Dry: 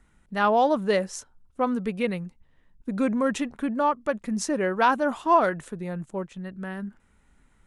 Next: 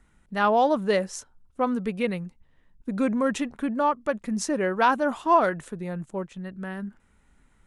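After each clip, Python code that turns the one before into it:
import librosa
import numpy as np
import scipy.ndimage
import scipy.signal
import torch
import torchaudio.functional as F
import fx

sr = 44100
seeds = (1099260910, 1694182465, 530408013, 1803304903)

y = x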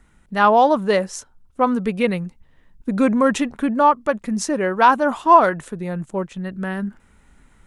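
y = fx.dynamic_eq(x, sr, hz=1000.0, q=1.9, threshold_db=-34.0, ratio=4.0, max_db=4)
y = fx.rider(y, sr, range_db=4, speed_s=2.0)
y = y * librosa.db_to_amplitude(4.5)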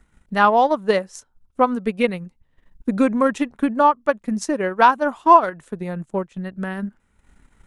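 y = fx.transient(x, sr, attack_db=5, sustain_db=-8)
y = y * librosa.db_to_amplitude(-2.5)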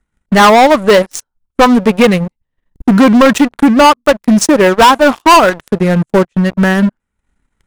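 y = fx.leveller(x, sr, passes=5)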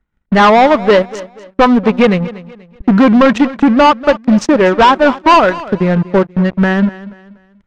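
y = fx.air_absorb(x, sr, metres=160.0)
y = fx.echo_feedback(y, sr, ms=241, feedback_pct=33, wet_db=-17.5)
y = y * librosa.db_to_amplitude(-1.0)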